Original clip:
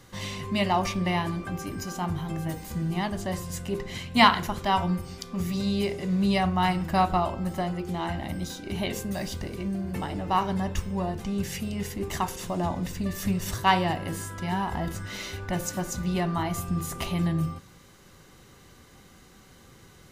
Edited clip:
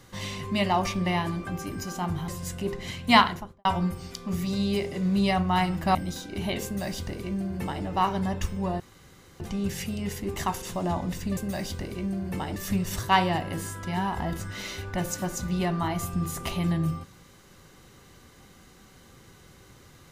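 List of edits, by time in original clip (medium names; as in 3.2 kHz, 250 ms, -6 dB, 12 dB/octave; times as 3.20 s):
2.28–3.35 s: delete
4.23–4.72 s: studio fade out
7.02–8.29 s: delete
8.99–10.18 s: copy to 13.11 s
11.14 s: insert room tone 0.60 s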